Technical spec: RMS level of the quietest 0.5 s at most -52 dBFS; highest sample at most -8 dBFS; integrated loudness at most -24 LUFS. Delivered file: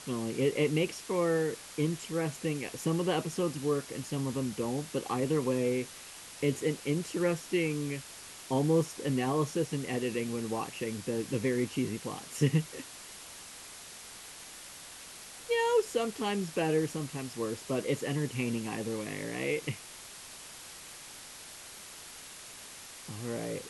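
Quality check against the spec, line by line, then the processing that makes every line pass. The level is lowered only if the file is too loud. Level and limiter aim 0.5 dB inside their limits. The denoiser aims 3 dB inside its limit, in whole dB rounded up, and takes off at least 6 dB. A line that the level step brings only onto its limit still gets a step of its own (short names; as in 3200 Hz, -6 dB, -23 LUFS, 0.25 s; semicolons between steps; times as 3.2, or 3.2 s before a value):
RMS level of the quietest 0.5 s -48 dBFS: fail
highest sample -14.5 dBFS: OK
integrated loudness -32.5 LUFS: OK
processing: denoiser 7 dB, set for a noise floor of -48 dBFS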